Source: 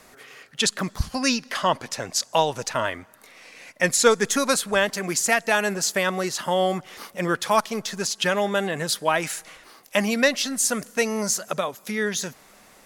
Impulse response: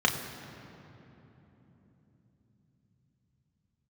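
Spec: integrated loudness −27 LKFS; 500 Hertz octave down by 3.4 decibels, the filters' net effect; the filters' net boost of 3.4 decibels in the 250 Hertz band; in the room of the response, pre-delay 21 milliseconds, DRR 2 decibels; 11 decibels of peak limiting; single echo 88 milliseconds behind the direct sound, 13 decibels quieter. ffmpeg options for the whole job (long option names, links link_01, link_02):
-filter_complex "[0:a]equalizer=frequency=250:width_type=o:gain=5.5,equalizer=frequency=500:width_type=o:gain=-5.5,alimiter=limit=-16.5dB:level=0:latency=1,aecho=1:1:88:0.224,asplit=2[link_01][link_02];[1:a]atrim=start_sample=2205,adelay=21[link_03];[link_02][link_03]afir=irnorm=-1:irlink=0,volume=-15dB[link_04];[link_01][link_04]amix=inputs=2:normalize=0,volume=-2dB"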